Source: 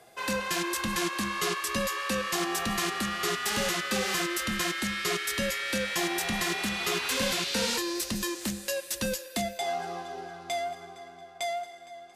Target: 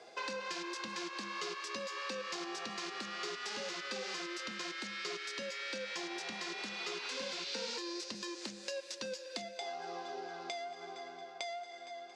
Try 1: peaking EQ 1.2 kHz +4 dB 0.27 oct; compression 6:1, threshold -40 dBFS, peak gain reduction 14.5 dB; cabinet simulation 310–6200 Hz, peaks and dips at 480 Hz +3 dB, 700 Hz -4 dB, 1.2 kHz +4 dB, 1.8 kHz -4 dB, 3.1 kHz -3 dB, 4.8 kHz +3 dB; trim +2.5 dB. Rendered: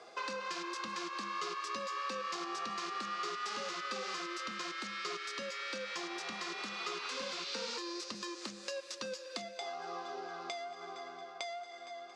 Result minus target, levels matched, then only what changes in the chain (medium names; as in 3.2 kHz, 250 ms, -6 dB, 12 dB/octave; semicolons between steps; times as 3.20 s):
1 kHz band +3.5 dB
change: peaking EQ 1.2 kHz -8 dB 0.27 oct